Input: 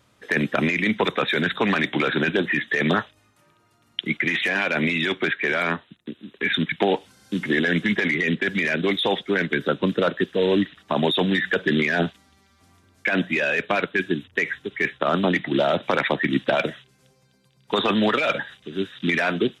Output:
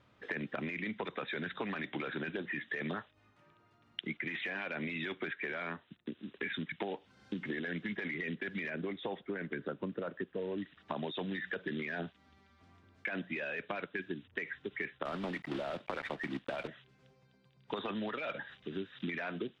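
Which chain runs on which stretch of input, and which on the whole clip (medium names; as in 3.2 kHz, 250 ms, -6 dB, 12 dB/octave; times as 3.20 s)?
8.70–10.58 s: low-pass 4 kHz + treble shelf 3 kHz -11 dB
15.05–16.68 s: block-companded coder 3-bit + peaking EQ 6.4 kHz -4.5 dB 0.66 oct
whole clip: low-pass 3.2 kHz 12 dB/octave; compression 6:1, threshold -31 dBFS; trim -5 dB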